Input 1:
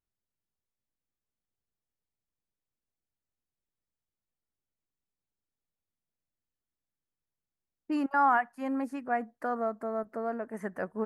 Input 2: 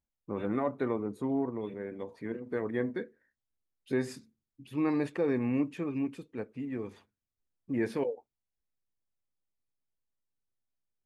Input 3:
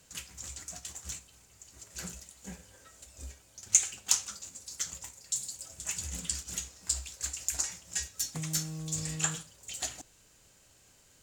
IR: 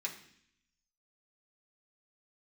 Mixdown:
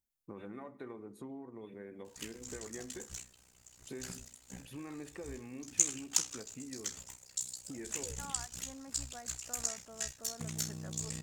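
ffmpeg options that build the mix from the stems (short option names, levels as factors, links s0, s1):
-filter_complex "[0:a]adelay=50,volume=0.126[s0];[1:a]volume=0.562,asplit=2[s1][s2];[s2]volume=0.126[s3];[2:a]tremolo=f=62:d=0.889,adelay=2050,volume=0.891[s4];[s0][s1]amix=inputs=2:normalize=0,highshelf=f=4900:g=11.5,acompressor=threshold=0.00631:ratio=10,volume=1[s5];[3:a]atrim=start_sample=2205[s6];[s3][s6]afir=irnorm=-1:irlink=0[s7];[s4][s5][s7]amix=inputs=3:normalize=0"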